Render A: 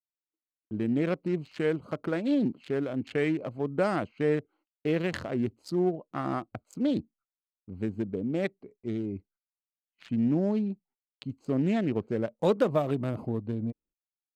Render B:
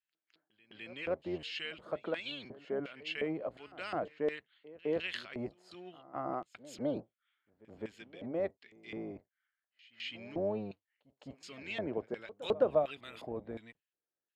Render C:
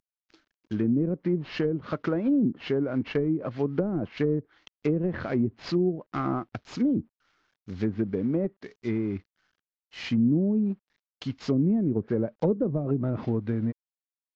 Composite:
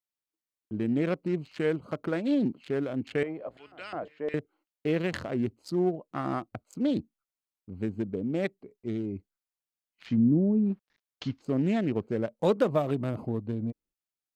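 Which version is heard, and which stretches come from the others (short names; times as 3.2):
A
3.23–4.34 from B
10.12–11.35 from C, crossfade 0.16 s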